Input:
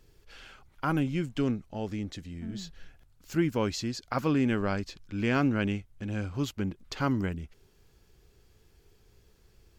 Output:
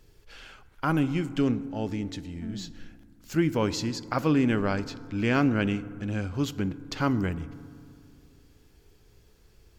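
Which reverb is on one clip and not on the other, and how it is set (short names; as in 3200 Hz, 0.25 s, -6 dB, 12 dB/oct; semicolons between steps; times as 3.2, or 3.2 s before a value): FDN reverb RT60 2.2 s, low-frequency decay 1.3×, high-frequency decay 0.35×, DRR 14.5 dB; gain +2.5 dB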